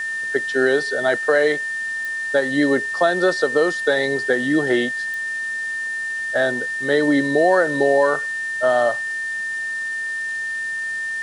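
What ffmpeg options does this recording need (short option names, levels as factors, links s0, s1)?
-af "adeclick=t=4,bandreject=f=1800:w=30,afwtdn=0.0089"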